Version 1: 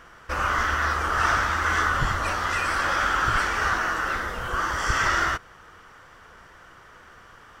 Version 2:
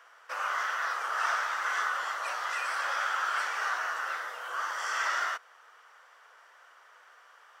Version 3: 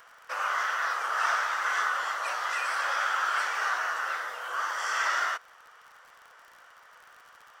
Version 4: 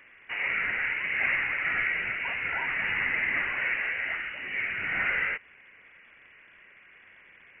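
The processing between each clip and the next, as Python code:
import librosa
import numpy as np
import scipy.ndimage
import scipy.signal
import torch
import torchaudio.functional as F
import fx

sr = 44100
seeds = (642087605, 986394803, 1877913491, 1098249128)

y1 = scipy.signal.sosfilt(scipy.signal.butter(4, 560.0, 'highpass', fs=sr, output='sos'), x)
y1 = F.gain(torch.from_numpy(y1), -7.0).numpy()
y2 = fx.dmg_crackle(y1, sr, seeds[0], per_s=63.0, level_db=-45.0)
y2 = F.gain(torch.from_numpy(y2), 2.5).numpy()
y3 = fx.freq_invert(y2, sr, carrier_hz=3400)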